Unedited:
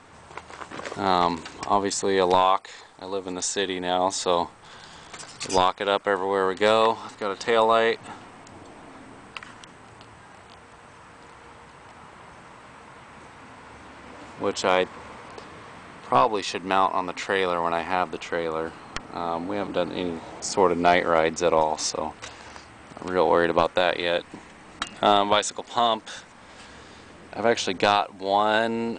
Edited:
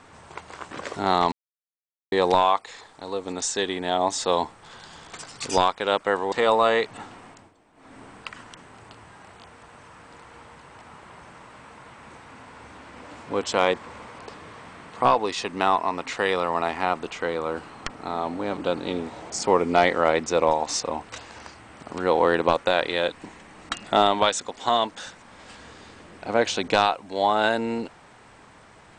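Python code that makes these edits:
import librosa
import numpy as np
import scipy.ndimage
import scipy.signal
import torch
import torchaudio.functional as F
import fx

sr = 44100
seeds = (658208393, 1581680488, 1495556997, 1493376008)

y = fx.edit(x, sr, fx.silence(start_s=1.32, length_s=0.8),
    fx.cut(start_s=6.32, length_s=1.1),
    fx.fade_down_up(start_s=8.37, length_s=0.72, db=-15.5, fade_s=0.25), tone=tone)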